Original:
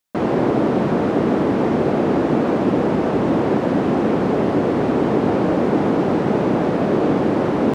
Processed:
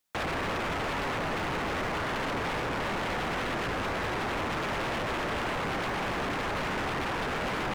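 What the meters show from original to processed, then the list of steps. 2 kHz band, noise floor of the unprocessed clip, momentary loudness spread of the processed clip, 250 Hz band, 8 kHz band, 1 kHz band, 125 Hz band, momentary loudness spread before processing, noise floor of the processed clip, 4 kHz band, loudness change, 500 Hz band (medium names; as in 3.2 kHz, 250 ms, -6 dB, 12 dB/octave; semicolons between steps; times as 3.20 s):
0.0 dB, -21 dBFS, 0 LU, -19.5 dB, no reading, -7.5 dB, -13.5 dB, 1 LU, -32 dBFS, +2.0 dB, -12.5 dB, -16.0 dB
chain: peak limiter -14.5 dBFS, peak gain reduction 8.5 dB; wavefolder -26.5 dBFS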